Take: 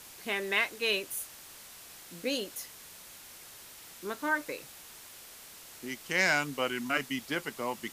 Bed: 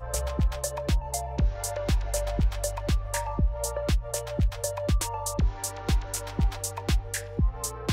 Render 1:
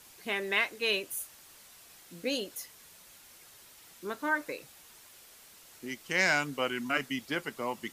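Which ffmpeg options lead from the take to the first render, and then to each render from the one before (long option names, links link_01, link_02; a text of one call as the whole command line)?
ffmpeg -i in.wav -af "afftdn=noise_reduction=6:noise_floor=-50" out.wav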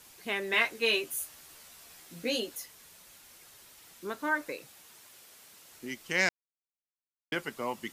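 ffmpeg -i in.wav -filter_complex "[0:a]asettb=1/sr,asplit=3[link_01][link_02][link_03];[link_01]atrim=end=0.524[link_04];[link_02]atrim=start=0.52:end=2.56,asetpts=PTS-STARTPTS,afade=type=in:duration=0.004:curve=qsin,afade=type=out:start_time=2.036:duration=0.004:curve=qsin,asplit=2[link_05][link_06];[link_06]adelay=13,volume=-2.5dB[link_07];[link_05][link_07]amix=inputs=2:normalize=0,atrim=end_sample=89964[link_08];[link_03]atrim=start=2.556[link_09];[link_04][link_08]acrossfade=duration=0.004:curve1=hsin:curve2=qsin[link_10];[link_10][link_09]acrossfade=duration=0.004:curve1=qsin:curve2=hsin,asettb=1/sr,asplit=3[link_11][link_12][link_13];[link_11]atrim=end=4.494[link_14];[link_12]atrim=start=4.49:end=5.71,asetpts=PTS-STARTPTS,afade=type=in:duration=0.004:curve=qsin,afade=type=out:start_time=1.216:duration=0.004:curve=qsin,highpass=91[link_15];[link_13]atrim=start=5.706[link_16];[link_14][link_15]acrossfade=duration=0.004:curve1=hsin:curve2=qsin[link_17];[link_17][link_16]acrossfade=duration=0.004:curve1=qsin:curve2=hsin,asplit=3[link_18][link_19][link_20];[link_18]atrim=end=6.29,asetpts=PTS-STARTPTS,afade=type=out:start_time=6.286:duration=0.004:curve=hsin[link_21];[link_19]atrim=start=6.29:end=7.32,asetpts=PTS-STARTPTS,volume=0[link_22];[link_20]atrim=start=7.32,asetpts=PTS-STARTPTS,afade=type=in:duration=0.004:curve=hsin[link_23];[link_21][link_22][link_23]concat=n=3:v=0:a=1" out.wav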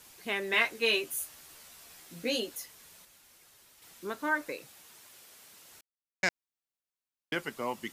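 ffmpeg -i in.wav -filter_complex "[0:a]asplit=5[link_01][link_02][link_03][link_04][link_05];[link_01]atrim=end=3.052[link_06];[link_02]atrim=start=3.048:end=3.822,asetpts=PTS-STARTPTS,volume=-5dB[link_07];[link_03]atrim=start=3.818:end=5.81,asetpts=PTS-STARTPTS,afade=type=out:start_time=1.988:duration=0.004:curve=hsin[link_08];[link_04]atrim=start=5.81:end=6.23,asetpts=PTS-STARTPTS,volume=0[link_09];[link_05]atrim=start=6.23,asetpts=PTS-STARTPTS,afade=type=in:duration=0.004:curve=hsin[link_10];[link_06][link_07]acrossfade=duration=0.004:curve1=hsin:curve2=hsin[link_11];[link_08][link_09][link_10]concat=n=3:v=0:a=1[link_12];[link_11][link_12]acrossfade=duration=0.004:curve1=hsin:curve2=hsin" out.wav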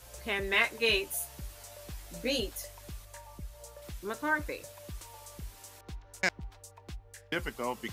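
ffmpeg -i in.wav -i bed.wav -filter_complex "[1:a]volume=-19dB[link_01];[0:a][link_01]amix=inputs=2:normalize=0" out.wav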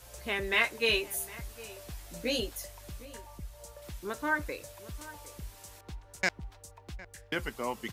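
ffmpeg -i in.wav -filter_complex "[0:a]asplit=2[link_01][link_02];[link_02]adelay=758,volume=-17dB,highshelf=frequency=4000:gain=-17.1[link_03];[link_01][link_03]amix=inputs=2:normalize=0" out.wav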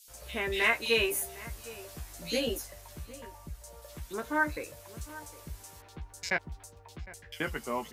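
ffmpeg -i in.wav -filter_complex "[0:a]asplit=2[link_01][link_02];[link_02]adelay=13,volume=-7dB[link_03];[link_01][link_03]amix=inputs=2:normalize=0,acrossover=split=3200[link_04][link_05];[link_04]adelay=80[link_06];[link_06][link_05]amix=inputs=2:normalize=0" out.wav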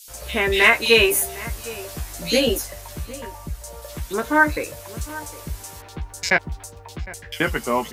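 ffmpeg -i in.wav -af "volume=12dB,alimiter=limit=-1dB:level=0:latency=1" out.wav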